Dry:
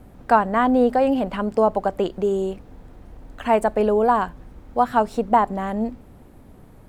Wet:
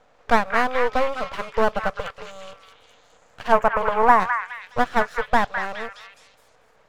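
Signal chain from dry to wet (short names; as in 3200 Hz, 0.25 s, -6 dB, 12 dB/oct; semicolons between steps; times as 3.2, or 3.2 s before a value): FFT band-pass 420–7400 Hz; half-wave rectifier; 3.52–4.2 ten-band EQ 1000 Hz +9 dB, 2000 Hz +3 dB, 4000 Hz -11 dB; on a send: delay with a stepping band-pass 0.208 s, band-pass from 1700 Hz, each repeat 0.7 oct, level -2 dB; on the sum: gain +2 dB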